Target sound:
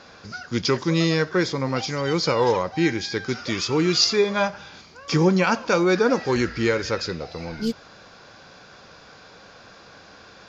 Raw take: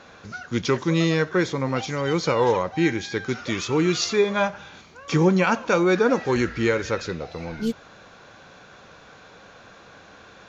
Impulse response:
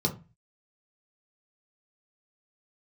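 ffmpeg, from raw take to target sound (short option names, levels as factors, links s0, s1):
-af "equalizer=f=4900:w=5.2:g=13"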